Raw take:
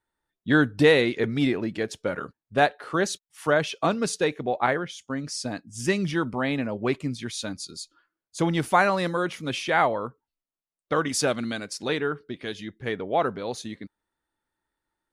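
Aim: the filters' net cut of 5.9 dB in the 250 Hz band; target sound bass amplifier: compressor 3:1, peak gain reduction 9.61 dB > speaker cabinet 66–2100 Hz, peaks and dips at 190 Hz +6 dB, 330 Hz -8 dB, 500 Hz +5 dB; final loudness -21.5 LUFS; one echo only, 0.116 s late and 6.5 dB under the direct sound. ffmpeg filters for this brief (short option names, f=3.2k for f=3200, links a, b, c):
-af "equalizer=f=250:t=o:g=-7.5,aecho=1:1:116:0.473,acompressor=threshold=-27dB:ratio=3,highpass=f=66:w=0.5412,highpass=f=66:w=1.3066,equalizer=f=190:t=q:w=4:g=6,equalizer=f=330:t=q:w=4:g=-8,equalizer=f=500:t=q:w=4:g=5,lowpass=f=2.1k:w=0.5412,lowpass=f=2.1k:w=1.3066,volume=10dB"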